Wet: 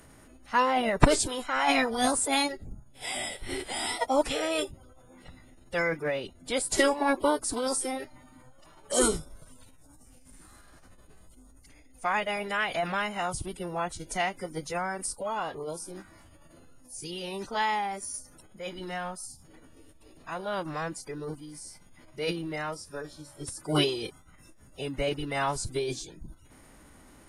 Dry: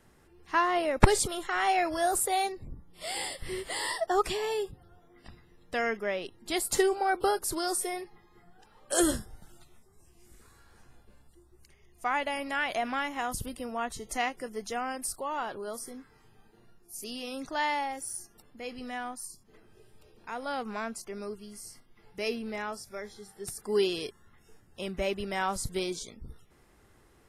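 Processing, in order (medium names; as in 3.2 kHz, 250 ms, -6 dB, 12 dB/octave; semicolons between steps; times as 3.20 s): whistle 9.2 kHz -54 dBFS; formant-preserving pitch shift -5.5 st; short-mantissa float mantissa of 6-bit; trim +2 dB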